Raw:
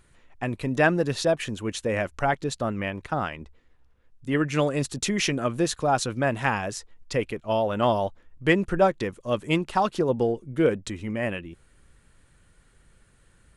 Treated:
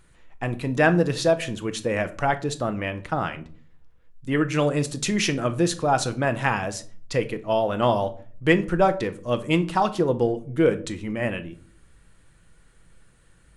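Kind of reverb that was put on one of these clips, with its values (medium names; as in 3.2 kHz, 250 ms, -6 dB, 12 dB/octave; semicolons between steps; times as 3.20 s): simulated room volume 410 m³, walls furnished, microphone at 0.66 m; trim +1 dB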